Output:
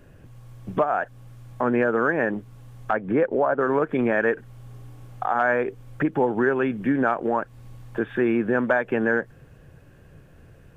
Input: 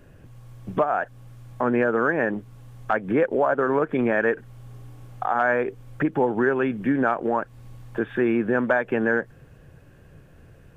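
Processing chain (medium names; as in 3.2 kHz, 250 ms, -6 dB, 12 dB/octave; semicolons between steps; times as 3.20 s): 2.91–3.61 s: treble shelf 3.2 kHz -10.5 dB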